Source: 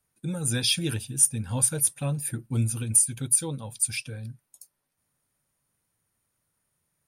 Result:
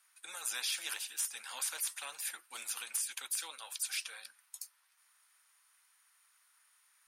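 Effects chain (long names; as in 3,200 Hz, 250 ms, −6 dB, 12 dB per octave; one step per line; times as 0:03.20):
high-pass filter 1,100 Hz 24 dB per octave
high-shelf EQ 9,800 Hz −10 dB
brickwall limiter −18.5 dBFS, peak gain reduction 6.5 dB
every bin compressed towards the loudest bin 2 to 1
level −2.5 dB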